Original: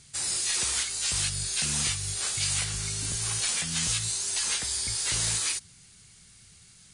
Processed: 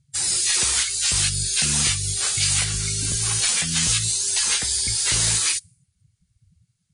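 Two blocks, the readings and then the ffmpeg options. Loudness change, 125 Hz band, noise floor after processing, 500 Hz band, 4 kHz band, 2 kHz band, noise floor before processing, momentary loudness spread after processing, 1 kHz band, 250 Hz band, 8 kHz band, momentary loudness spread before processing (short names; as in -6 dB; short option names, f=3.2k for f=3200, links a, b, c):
+7.5 dB, +7.5 dB, -72 dBFS, +5.5 dB, +7.0 dB, +7.0 dB, -55 dBFS, 4 LU, +5.5 dB, +7.5 dB, +7.5 dB, 3 LU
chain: -af "afftdn=nr=31:nf=-43,volume=7.5dB"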